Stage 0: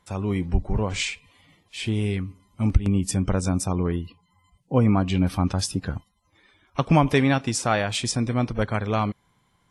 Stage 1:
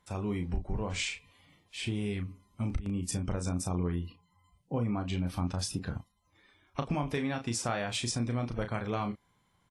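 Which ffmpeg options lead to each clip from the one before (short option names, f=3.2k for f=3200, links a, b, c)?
-filter_complex "[0:a]acompressor=threshold=-23dB:ratio=5,asplit=2[a][b];[b]adelay=34,volume=-7dB[c];[a][c]amix=inputs=2:normalize=0,volume=-6dB"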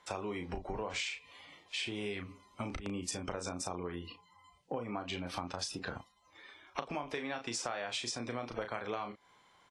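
-filter_complex "[0:a]acrossover=split=340 7800:gain=0.141 1 0.126[a][b][c];[a][b][c]amix=inputs=3:normalize=0,acompressor=threshold=-45dB:ratio=6,volume=9.5dB"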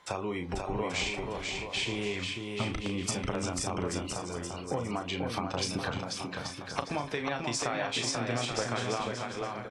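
-filter_complex "[0:a]equalizer=f=130:w=4.1:g=9,asplit=2[a][b];[b]aecho=0:1:490|833|1073|1241|1359:0.631|0.398|0.251|0.158|0.1[c];[a][c]amix=inputs=2:normalize=0,volume=4.5dB"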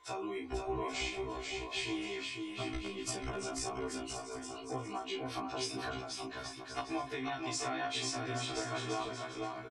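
-af "aecho=1:1:2.8:0.93,afftfilt=real='re*1.73*eq(mod(b,3),0)':imag='im*1.73*eq(mod(b,3),0)':win_size=2048:overlap=0.75,volume=-5.5dB"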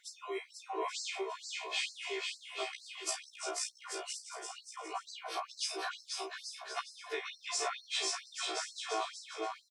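-af "afftfilt=real='re*gte(b*sr/1024,310*pow(4100/310,0.5+0.5*sin(2*PI*2.2*pts/sr)))':imag='im*gte(b*sr/1024,310*pow(4100/310,0.5+0.5*sin(2*PI*2.2*pts/sr)))':win_size=1024:overlap=0.75,volume=3dB"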